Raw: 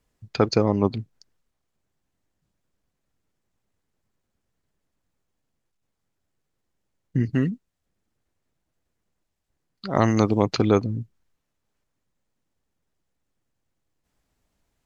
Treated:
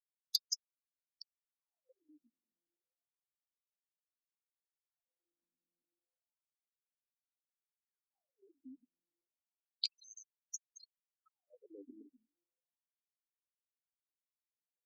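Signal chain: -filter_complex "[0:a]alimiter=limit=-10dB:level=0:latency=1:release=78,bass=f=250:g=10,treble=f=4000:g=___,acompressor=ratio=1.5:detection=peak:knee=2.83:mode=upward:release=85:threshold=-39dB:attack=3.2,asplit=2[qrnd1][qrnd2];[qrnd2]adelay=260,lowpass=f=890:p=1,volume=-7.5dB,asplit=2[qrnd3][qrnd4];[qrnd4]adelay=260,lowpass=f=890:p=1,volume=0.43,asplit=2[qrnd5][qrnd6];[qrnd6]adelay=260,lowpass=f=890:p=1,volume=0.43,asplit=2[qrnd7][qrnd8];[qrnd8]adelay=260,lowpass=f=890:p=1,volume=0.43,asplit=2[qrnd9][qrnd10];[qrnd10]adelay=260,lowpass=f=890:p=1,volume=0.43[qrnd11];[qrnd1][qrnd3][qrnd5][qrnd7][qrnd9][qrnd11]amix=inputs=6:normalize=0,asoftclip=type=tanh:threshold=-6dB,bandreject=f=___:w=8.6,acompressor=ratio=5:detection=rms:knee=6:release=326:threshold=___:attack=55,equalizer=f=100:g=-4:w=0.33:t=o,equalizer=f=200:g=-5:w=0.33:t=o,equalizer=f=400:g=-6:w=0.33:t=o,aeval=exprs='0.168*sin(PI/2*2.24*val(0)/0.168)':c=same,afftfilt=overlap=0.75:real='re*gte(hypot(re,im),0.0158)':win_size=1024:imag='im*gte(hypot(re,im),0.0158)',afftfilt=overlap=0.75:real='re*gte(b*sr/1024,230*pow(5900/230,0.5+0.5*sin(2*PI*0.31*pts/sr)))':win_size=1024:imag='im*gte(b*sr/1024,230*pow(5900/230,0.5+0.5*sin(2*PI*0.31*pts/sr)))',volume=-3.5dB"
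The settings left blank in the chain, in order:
5, 870, -32dB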